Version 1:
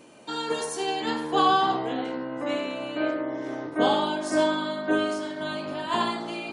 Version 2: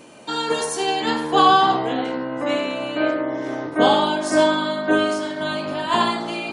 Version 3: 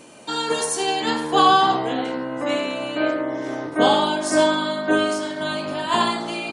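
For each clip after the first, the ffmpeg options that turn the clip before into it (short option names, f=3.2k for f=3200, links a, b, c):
-af "equalizer=f=340:w=1.5:g=-2,volume=7dB"
-af "acrusher=bits=10:mix=0:aa=0.000001,highshelf=f=8k:g=9.5,aresample=22050,aresample=44100,volume=-1dB"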